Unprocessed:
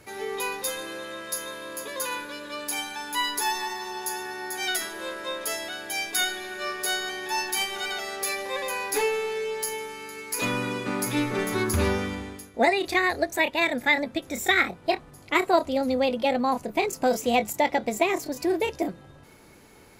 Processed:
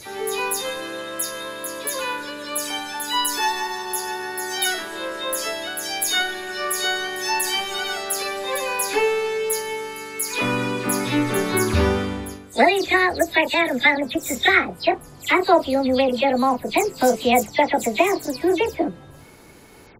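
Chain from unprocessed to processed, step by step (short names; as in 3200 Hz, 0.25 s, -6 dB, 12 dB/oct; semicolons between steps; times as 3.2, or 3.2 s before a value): spectral delay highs early, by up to 0.129 s; gain +5.5 dB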